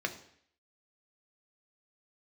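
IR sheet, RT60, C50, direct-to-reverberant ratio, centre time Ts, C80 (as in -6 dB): 0.65 s, 12.5 dB, 5.0 dB, 10 ms, 15.5 dB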